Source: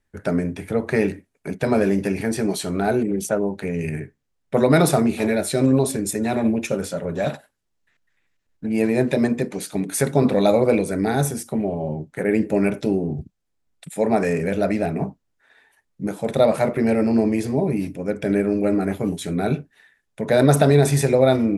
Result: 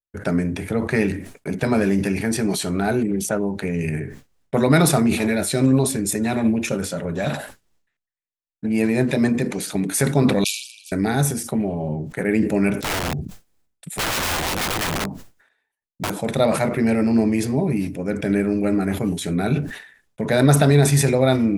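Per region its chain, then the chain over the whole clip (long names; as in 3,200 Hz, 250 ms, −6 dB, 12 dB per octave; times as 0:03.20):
0:10.44–0:10.92: linear-phase brick-wall high-pass 2,300 Hz + head-to-tape spacing loss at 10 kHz 21 dB + every bin compressed towards the loudest bin 4 to 1
0:12.77–0:16.10: high-shelf EQ 10,000 Hz +6 dB + wrap-around overflow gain 20.5 dB
whole clip: downward expander −41 dBFS; dynamic equaliser 530 Hz, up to −6 dB, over −30 dBFS, Q 0.99; level that may fall only so fast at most 88 dB per second; level +2.5 dB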